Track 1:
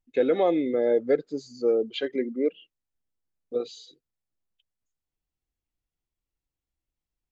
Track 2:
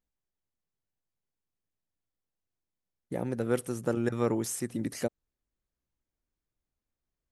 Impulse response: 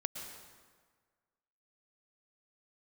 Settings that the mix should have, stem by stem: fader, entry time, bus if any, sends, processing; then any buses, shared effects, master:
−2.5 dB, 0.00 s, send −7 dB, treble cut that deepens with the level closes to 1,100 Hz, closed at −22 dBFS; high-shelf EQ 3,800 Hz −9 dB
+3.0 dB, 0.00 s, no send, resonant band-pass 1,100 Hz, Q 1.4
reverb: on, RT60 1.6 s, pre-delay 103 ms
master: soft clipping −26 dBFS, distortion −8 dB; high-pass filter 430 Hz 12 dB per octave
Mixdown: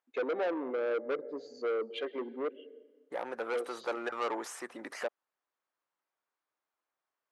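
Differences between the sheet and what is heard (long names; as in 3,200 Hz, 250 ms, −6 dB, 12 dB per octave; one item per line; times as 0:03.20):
stem 1: send −7 dB → −13.5 dB
stem 2 +3.0 dB → +10.5 dB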